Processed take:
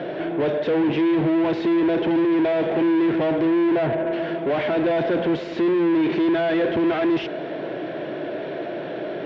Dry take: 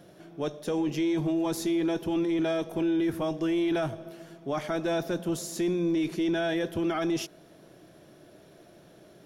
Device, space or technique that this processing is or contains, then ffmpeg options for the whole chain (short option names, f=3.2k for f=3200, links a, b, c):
overdrive pedal into a guitar cabinet: -filter_complex "[0:a]asettb=1/sr,asplit=3[a][b][c];[a]atrim=end=3.454[d];[b]atrim=start=3.45:end=4.13,asetpts=PTS-STARTPTS,afade=t=in:d=0.004:c=qsin,afade=t=out:st=0.676:d=0.004:c=qsin,lowpass=1.6k[e];[c]atrim=start=4.126[f];[d][e]acrossfade=d=0.004:c1=hsin:c2=qsin[g];[g][f]acrossfade=d=0.004:c1=qsin:c2=hsin,highshelf=f=9.5k:g=-9.5,asplit=2[h][i];[i]highpass=f=720:p=1,volume=33dB,asoftclip=type=tanh:threshold=-20dB[j];[h][j]amix=inputs=2:normalize=0,lowpass=f=1.1k:p=1,volume=-6dB,highpass=95,equalizer=f=95:t=q:w=4:g=-8,equalizer=f=190:t=q:w=4:g=-6,equalizer=f=810:t=q:w=4:g=-4,equalizer=f=1.2k:t=q:w=4:g=-9,lowpass=f=3.5k:w=0.5412,lowpass=f=3.5k:w=1.3066,volume=7dB"